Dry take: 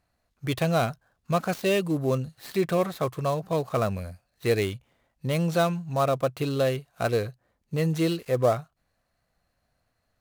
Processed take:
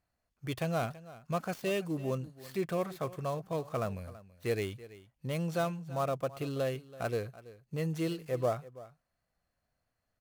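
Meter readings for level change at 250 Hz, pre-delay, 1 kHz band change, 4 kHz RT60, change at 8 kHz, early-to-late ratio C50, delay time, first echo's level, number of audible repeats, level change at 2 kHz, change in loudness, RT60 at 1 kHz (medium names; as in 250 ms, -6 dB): -8.5 dB, no reverb, -8.5 dB, no reverb, -8.5 dB, no reverb, 330 ms, -18.0 dB, 1, -8.5 dB, -8.5 dB, no reverb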